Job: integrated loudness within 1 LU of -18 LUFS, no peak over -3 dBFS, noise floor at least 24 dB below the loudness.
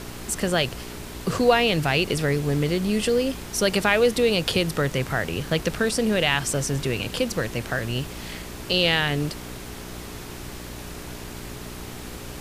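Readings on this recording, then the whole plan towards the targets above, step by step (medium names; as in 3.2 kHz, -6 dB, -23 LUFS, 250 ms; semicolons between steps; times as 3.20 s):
hum 60 Hz; highest harmonic 420 Hz; hum level -38 dBFS; noise floor -37 dBFS; noise floor target -47 dBFS; loudness -23.0 LUFS; peak level -5.5 dBFS; loudness target -18.0 LUFS
-> de-hum 60 Hz, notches 7; noise print and reduce 10 dB; trim +5 dB; peak limiter -3 dBFS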